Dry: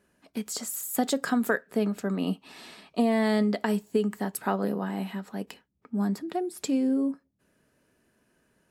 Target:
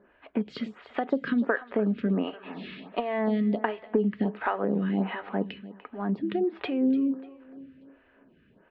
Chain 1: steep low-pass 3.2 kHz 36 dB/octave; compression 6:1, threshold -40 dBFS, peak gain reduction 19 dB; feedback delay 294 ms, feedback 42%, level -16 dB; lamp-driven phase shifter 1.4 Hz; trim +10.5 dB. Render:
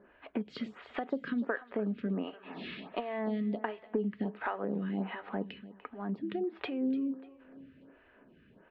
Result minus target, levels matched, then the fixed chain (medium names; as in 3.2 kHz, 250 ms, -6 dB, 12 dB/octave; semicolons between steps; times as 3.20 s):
compression: peak gain reduction +7.5 dB
steep low-pass 3.2 kHz 36 dB/octave; compression 6:1, threshold -31 dBFS, peak gain reduction 11.5 dB; feedback delay 294 ms, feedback 42%, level -16 dB; lamp-driven phase shifter 1.4 Hz; trim +10.5 dB